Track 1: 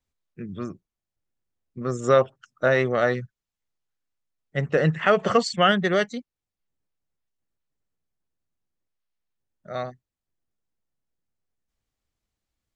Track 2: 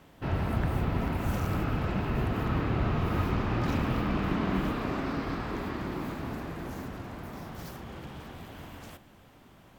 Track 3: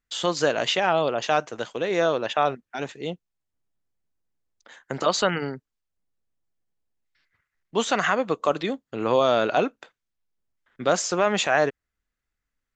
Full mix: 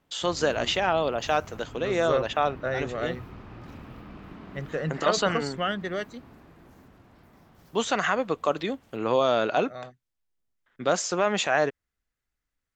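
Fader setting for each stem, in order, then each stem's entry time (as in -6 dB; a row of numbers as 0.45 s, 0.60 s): -9.5 dB, -15.0 dB, -2.5 dB; 0.00 s, 0.00 s, 0.00 s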